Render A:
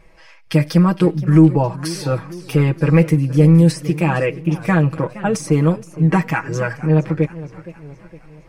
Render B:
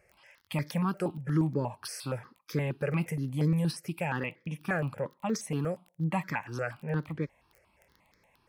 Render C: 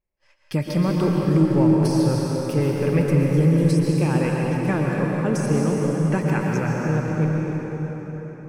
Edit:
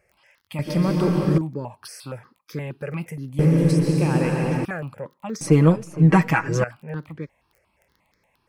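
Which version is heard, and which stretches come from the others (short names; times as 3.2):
B
0.59–1.38 from C
3.39–4.65 from C
5.41–6.64 from A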